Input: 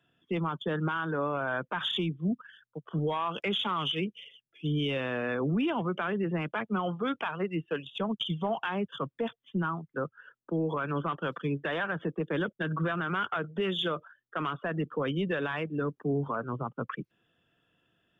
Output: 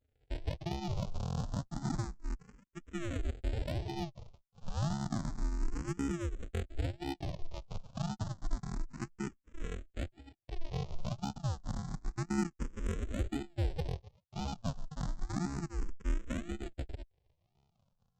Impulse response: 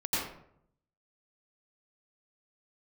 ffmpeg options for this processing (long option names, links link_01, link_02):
-filter_complex "[0:a]lowpass=3100,aemphasis=mode=production:type=50kf,afftfilt=real='hypot(re,im)*cos(PI*b)':imag='0':win_size=512:overlap=0.75,aresample=16000,acrusher=samples=41:mix=1:aa=0.000001:lfo=1:lforange=24.6:lforate=0.95,aresample=44100,asoftclip=type=tanh:threshold=-26.5dB,adynamicequalizer=threshold=0.00112:dfrequency=2200:dqfactor=0.78:tfrequency=2200:tqfactor=0.78:attack=5:release=100:ratio=0.375:range=3.5:mode=cutabove:tftype=bell,asplit=2[link_01][link_02];[link_02]afreqshift=0.3[link_03];[link_01][link_03]amix=inputs=2:normalize=1,volume=4.5dB"